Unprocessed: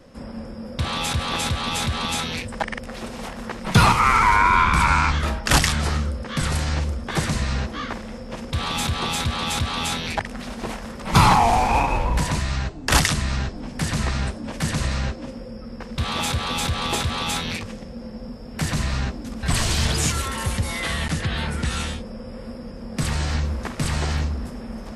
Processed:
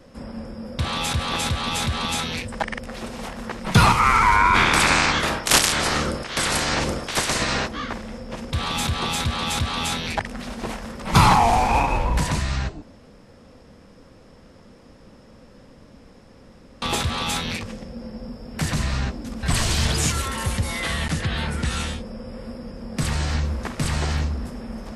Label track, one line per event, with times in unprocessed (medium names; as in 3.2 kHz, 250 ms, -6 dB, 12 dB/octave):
4.540000	7.670000	spectral peaks clipped ceiling under each frame's peak by 21 dB
12.820000	16.820000	room tone